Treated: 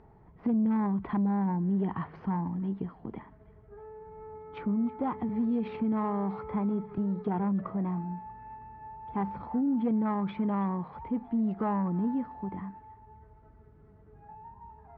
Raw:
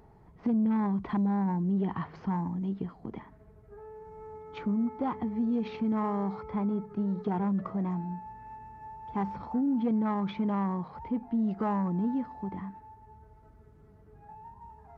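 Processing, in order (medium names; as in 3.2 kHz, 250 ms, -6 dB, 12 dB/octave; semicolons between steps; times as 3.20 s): low-pass 2.7 kHz 12 dB/octave; feedback echo behind a high-pass 319 ms, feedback 47%, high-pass 1.5 kHz, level -18 dB; 5.29–6.98 s: three bands compressed up and down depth 40%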